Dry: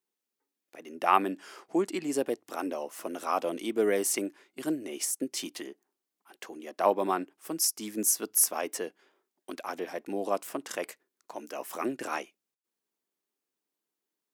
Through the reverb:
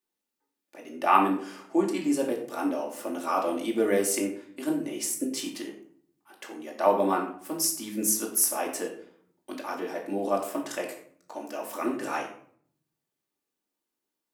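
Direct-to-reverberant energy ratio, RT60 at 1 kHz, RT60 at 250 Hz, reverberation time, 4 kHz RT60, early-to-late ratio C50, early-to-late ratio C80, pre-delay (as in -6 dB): -1.5 dB, 0.55 s, 1.0 s, 0.55 s, 0.35 s, 7.0 dB, 10.0 dB, 3 ms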